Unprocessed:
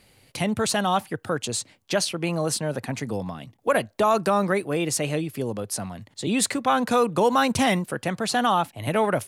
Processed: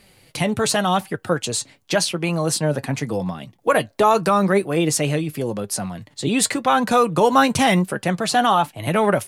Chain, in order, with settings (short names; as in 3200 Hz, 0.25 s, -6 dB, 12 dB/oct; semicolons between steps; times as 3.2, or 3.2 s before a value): flange 0.88 Hz, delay 4.9 ms, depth 2.5 ms, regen +59%; gain +8.5 dB